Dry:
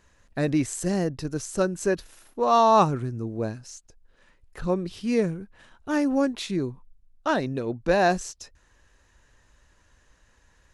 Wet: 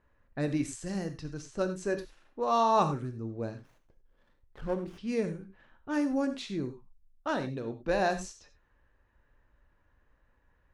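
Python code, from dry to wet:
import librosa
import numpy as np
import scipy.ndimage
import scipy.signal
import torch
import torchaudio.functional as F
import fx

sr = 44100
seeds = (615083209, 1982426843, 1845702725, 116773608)

y = fx.env_lowpass(x, sr, base_hz=1700.0, full_db=-20.5)
y = fx.peak_eq(y, sr, hz=470.0, db=-5.0, octaves=2.0, at=(0.61, 1.4))
y = fx.rev_gated(y, sr, seeds[0], gate_ms=120, shape='flat', drr_db=8.0)
y = fx.running_max(y, sr, window=9, at=(3.58, 4.98))
y = y * librosa.db_to_amplitude(-7.5)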